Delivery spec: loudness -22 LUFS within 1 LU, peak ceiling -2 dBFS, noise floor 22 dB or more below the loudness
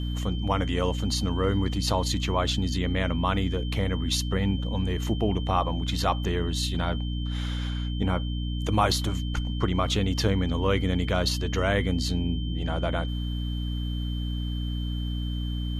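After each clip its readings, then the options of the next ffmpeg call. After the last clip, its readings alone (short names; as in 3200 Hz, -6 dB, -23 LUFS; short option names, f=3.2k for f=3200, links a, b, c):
hum 60 Hz; harmonics up to 300 Hz; hum level -27 dBFS; steady tone 3100 Hz; tone level -41 dBFS; loudness -27.5 LUFS; peak -9.0 dBFS; loudness target -22.0 LUFS
-> -af "bandreject=f=60:t=h:w=4,bandreject=f=120:t=h:w=4,bandreject=f=180:t=h:w=4,bandreject=f=240:t=h:w=4,bandreject=f=300:t=h:w=4"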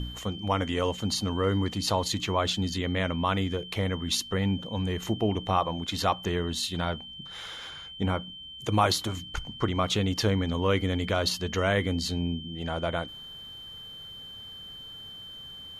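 hum none; steady tone 3100 Hz; tone level -41 dBFS
-> -af "bandreject=f=3.1k:w=30"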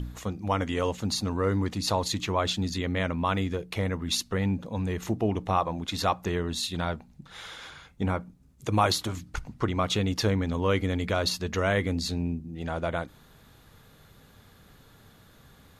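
steady tone none; loudness -28.5 LUFS; peak -10.0 dBFS; loudness target -22.0 LUFS
-> -af "volume=6.5dB"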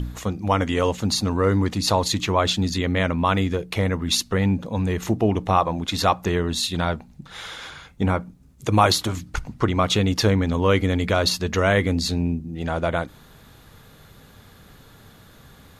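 loudness -22.0 LUFS; peak -3.5 dBFS; noise floor -50 dBFS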